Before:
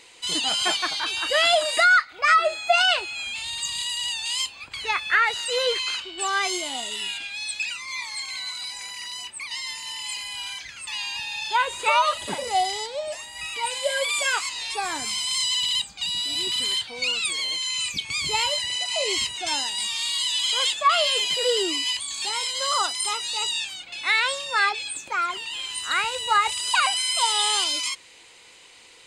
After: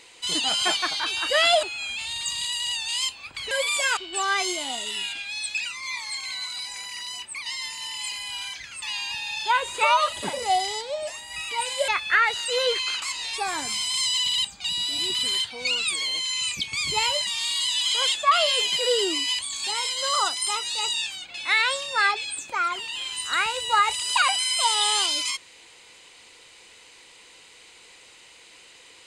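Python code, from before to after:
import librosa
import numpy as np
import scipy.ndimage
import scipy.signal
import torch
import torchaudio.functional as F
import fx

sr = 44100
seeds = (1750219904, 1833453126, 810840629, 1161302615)

y = fx.edit(x, sr, fx.cut(start_s=1.63, length_s=1.37),
    fx.swap(start_s=4.88, length_s=1.14, other_s=13.93, other_length_s=0.46),
    fx.cut(start_s=18.64, length_s=1.21), tone=tone)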